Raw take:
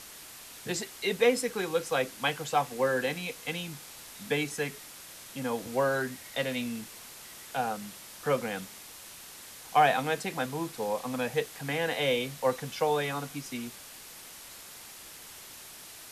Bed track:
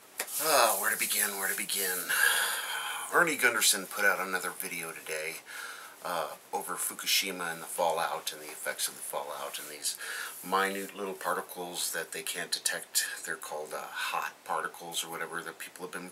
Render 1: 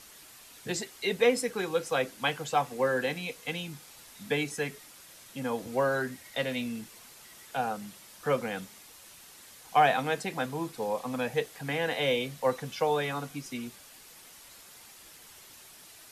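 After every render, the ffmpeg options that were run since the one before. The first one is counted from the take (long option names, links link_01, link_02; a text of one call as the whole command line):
ffmpeg -i in.wav -af "afftdn=noise_reduction=6:noise_floor=-48" out.wav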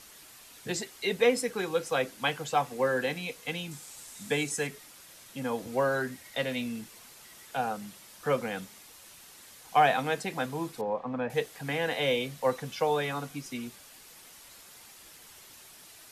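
ffmpeg -i in.wav -filter_complex "[0:a]asettb=1/sr,asplit=3[link_01][link_02][link_03];[link_01]atrim=end=3.714[link_04];[link_02]atrim=start=3.71:end=4.67,asetpts=PTS-STARTPTS,afade=type=in:duration=0.004:curve=qsin,afade=type=out:start_time=0.956:duration=0.004:curve=qsin,equalizer=frequency=7800:width=1.5:gain=9.5[link_05];[link_03]atrim=start=4.666[link_06];[link_04][link_05]acrossfade=duration=0.004:curve1=hsin:curve2=qsin[link_07];[link_07][link_06]acrossfade=duration=0.004:curve1=qsin:curve2=hsin,asettb=1/sr,asplit=3[link_08][link_09][link_10];[link_08]atrim=end=10.814[link_11];[link_09]atrim=start=10.81:end=11.3,asetpts=PTS-STARTPTS,afade=type=in:duration=0.004:curve=qsin,afade=type=out:start_time=0.486:duration=0.004:curve=qsin,lowpass=1700[link_12];[link_10]atrim=start=11.296[link_13];[link_11][link_12]acrossfade=duration=0.004:curve1=hsin:curve2=qsin[link_14];[link_14][link_13]acrossfade=duration=0.004:curve1=qsin:curve2=hsin" out.wav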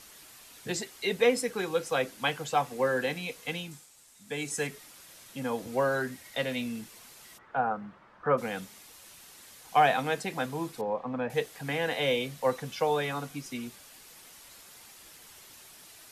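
ffmpeg -i in.wav -filter_complex "[0:a]asplit=3[link_01][link_02][link_03];[link_01]afade=type=out:start_time=7.37:duration=0.02[link_04];[link_02]lowpass=frequency=1300:width_type=q:width=1.8,afade=type=in:start_time=7.37:duration=0.02,afade=type=out:start_time=8.37:duration=0.02[link_05];[link_03]afade=type=in:start_time=8.37:duration=0.02[link_06];[link_04][link_05][link_06]amix=inputs=3:normalize=0,asplit=3[link_07][link_08][link_09];[link_07]atrim=end=3.89,asetpts=PTS-STARTPTS,afade=type=out:start_time=3.56:duration=0.33:silence=0.281838[link_10];[link_08]atrim=start=3.89:end=4.26,asetpts=PTS-STARTPTS,volume=-11dB[link_11];[link_09]atrim=start=4.26,asetpts=PTS-STARTPTS,afade=type=in:duration=0.33:silence=0.281838[link_12];[link_10][link_11][link_12]concat=n=3:v=0:a=1" out.wav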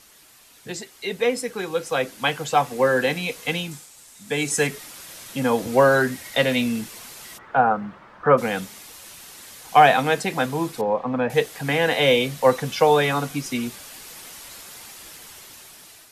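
ffmpeg -i in.wav -af "dynaudnorm=framelen=840:gausssize=5:maxgain=13dB" out.wav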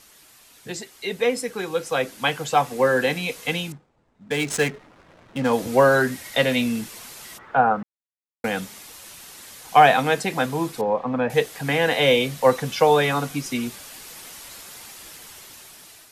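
ffmpeg -i in.wav -filter_complex "[0:a]asettb=1/sr,asplit=3[link_01][link_02][link_03];[link_01]atrim=end=3.724[link_04];[link_02]atrim=start=3.72:end=5.53,asetpts=PTS-STARTPTS,afade=type=in:duration=0.004:curve=qsin,afade=type=out:start_time=1.806:duration=0.004:curve=qsin,adynamicsmooth=sensitivity=7:basefreq=590[link_05];[link_03]atrim=start=5.526[link_06];[link_04][link_05]acrossfade=duration=0.004:curve1=hsin:curve2=qsin[link_07];[link_07][link_06]acrossfade=duration=0.004:curve1=qsin:curve2=hsin,asplit=3[link_08][link_09][link_10];[link_08]atrim=end=7.83,asetpts=PTS-STARTPTS,afade=type=out:start_time=7.826:duration=0.004:curve=hsin[link_11];[link_09]atrim=start=7.83:end=8.44,asetpts=PTS-STARTPTS,volume=0[link_12];[link_10]atrim=start=8.44,asetpts=PTS-STARTPTS,afade=type=in:duration=0.004:curve=hsin[link_13];[link_11][link_12][link_13]concat=n=3:v=0:a=1" out.wav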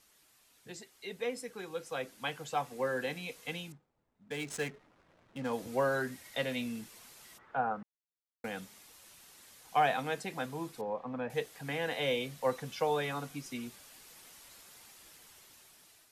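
ffmpeg -i in.wav -af "volume=-14.5dB" out.wav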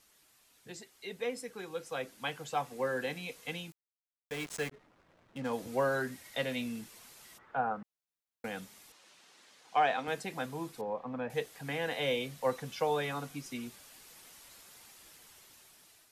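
ffmpeg -i in.wav -filter_complex "[0:a]asplit=3[link_01][link_02][link_03];[link_01]afade=type=out:start_time=3.7:duration=0.02[link_04];[link_02]aeval=exprs='val(0)*gte(abs(val(0)),0.00841)':channel_layout=same,afade=type=in:start_time=3.7:duration=0.02,afade=type=out:start_time=4.71:duration=0.02[link_05];[link_03]afade=type=in:start_time=4.71:duration=0.02[link_06];[link_04][link_05][link_06]amix=inputs=3:normalize=0,asettb=1/sr,asplit=3[link_07][link_08][link_09];[link_07]atrim=end=8.924[link_10];[link_08]atrim=start=8.92:end=10.08,asetpts=PTS-STARTPTS,afade=type=in:duration=0.004:curve=qsin,afade=type=out:start_time=1.156:duration=0.004:curve=qsin,highpass=230,lowpass=5700[link_11];[link_09]atrim=start=10.076[link_12];[link_10][link_11]acrossfade=duration=0.004:curve1=hsin:curve2=qsin[link_13];[link_13][link_12]acrossfade=duration=0.004:curve1=qsin:curve2=hsin" out.wav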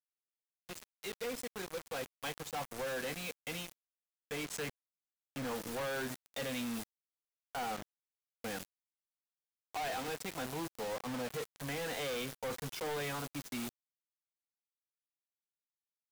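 ffmpeg -i in.wav -af "asoftclip=type=tanh:threshold=-34dB,acrusher=bits=6:mix=0:aa=0.000001" out.wav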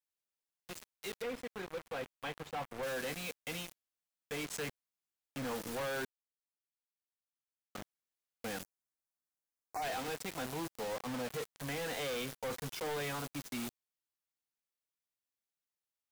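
ffmpeg -i in.wav -filter_complex "[0:a]asettb=1/sr,asplit=3[link_01][link_02][link_03];[link_01]atrim=end=1.224[link_04];[link_02]atrim=start=1.22:end=2.83,asetpts=PTS-STARTPTS,afade=type=in:duration=0.004:curve=qsin,afade=type=out:start_time=1.606:duration=0.004:curve=qsin,acrossover=split=3500[link_05][link_06];[link_06]acompressor=threshold=-57dB:ratio=4:attack=1:release=60[link_07];[link_05][link_07]amix=inputs=2:normalize=0[link_08];[link_03]atrim=start=2.826[link_09];[link_04][link_08]acrossfade=duration=0.004:curve1=hsin:curve2=qsin[link_10];[link_10][link_09]acrossfade=duration=0.004:curve1=qsin:curve2=hsin,asplit=3[link_11][link_12][link_13];[link_11]afade=type=out:start_time=8.62:duration=0.02[link_14];[link_12]asuperstop=centerf=3200:order=4:qfactor=0.93,afade=type=in:start_time=8.62:duration=0.02,afade=type=out:start_time=9.81:duration=0.02[link_15];[link_13]afade=type=in:start_time=9.81:duration=0.02[link_16];[link_14][link_15][link_16]amix=inputs=3:normalize=0,asplit=3[link_17][link_18][link_19];[link_17]atrim=end=6.05,asetpts=PTS-STARTPTS,afade=type=out:start_time=6.046:duration=0.004:curve=hsin[link_20];[link_18]atrim=start=6.05:end=7.75,asetpts=PTS-STARTPTS,volume=0[link_21];[link_19]atrim=start=7.75,asetpts=PTS-STARTPTS,afade=type=in:duration=0.004:curve=hsin[link_22];[link_20][link_21][link_22]concat=n=3:v=0:a=1" out.wav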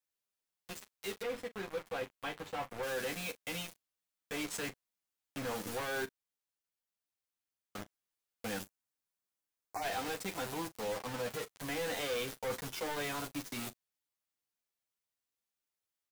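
ffmpeg -i in.wav -af "aecho=1:1:10|41:0.596|0.168" out.wav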